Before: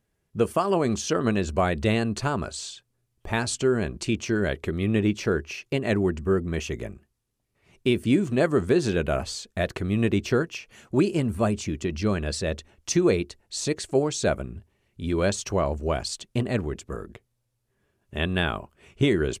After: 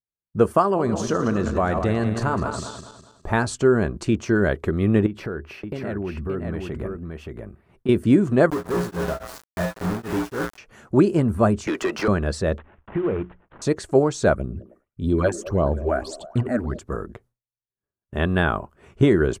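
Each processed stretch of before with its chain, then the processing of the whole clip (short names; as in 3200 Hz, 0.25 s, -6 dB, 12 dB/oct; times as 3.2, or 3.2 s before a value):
0.67–3.31 regenerating reverse delay 0.102 s, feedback 61%, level -8 dB + compressor 2:1, threshold -25 dBFS
5.06–7.89 bell 6400 Hz -13.5 dB 0.64 oct + compressor 5:1, threshold -31 dBFS + echo 0.574 s -4 dB
8.5–10.58 resonator 59 Hz, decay 0.51 s, harmonics odd, mix 90% + companded quantiser 2-bit + beating tremolo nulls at 3.6 Hz
11.67–12.08 HPF 460 Hz + overdrive pedal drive 23 dB, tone 3600 Hz, clips at -18 dBFS + three-band squash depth 70%
12.58–13.62 CVSD 16 kbps + notches 60/120/180 Hz + compressor 2.5:1, threshold -28 dBFS
14.34–16.79 phaser stages 8, 1.7 Hz, lowest notch 120–2100 Hz + delay with a stepping band-pass 0.105 s, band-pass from 270 Hz, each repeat 0.7 oct, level -10 dB
whole clip: expander -54 dBFS; resonant high shelf 1900 Hz -7.5 dB, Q 1.5; gain +5 dB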